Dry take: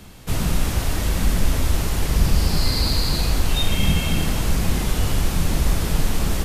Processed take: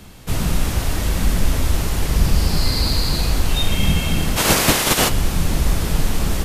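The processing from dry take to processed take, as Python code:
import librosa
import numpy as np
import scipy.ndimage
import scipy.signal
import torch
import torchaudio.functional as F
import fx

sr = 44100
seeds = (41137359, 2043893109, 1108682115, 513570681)

y = fx.spec_clip(x, sr, under_db=27, at=(4.36, 5.08), fade=0.02)
y = y * librosa.db_to_amplitude(1.5)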